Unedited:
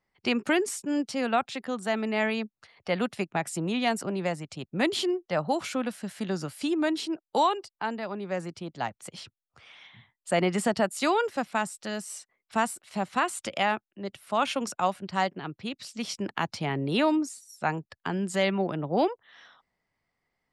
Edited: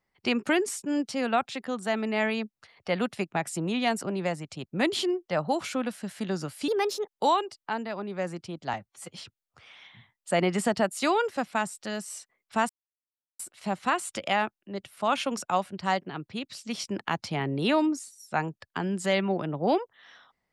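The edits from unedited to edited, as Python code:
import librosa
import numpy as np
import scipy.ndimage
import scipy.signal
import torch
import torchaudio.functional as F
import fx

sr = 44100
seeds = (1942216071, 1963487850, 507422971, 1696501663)

y = fx.edit(x, sr, fx.speed_span(start_s=6.68, length_s=0.55, speed=1.3),
    fx.stretch_span(start_s=8.86, length_s=0.26, factor=1.5),
    fx.insert_silence(at_s=12.69, length_s=0.7), tone=tone)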